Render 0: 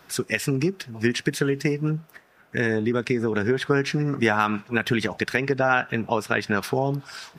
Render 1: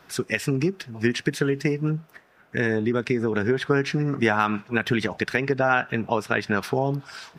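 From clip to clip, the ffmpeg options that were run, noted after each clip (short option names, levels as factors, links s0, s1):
-af "highshelf=f=6100:g=-6"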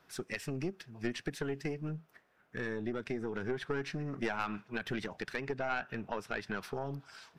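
-af "aeval=exprs='(tanh(3.55*val(0)+0.7)-tanh(0.7))/3.55':c=same,volume=0.355"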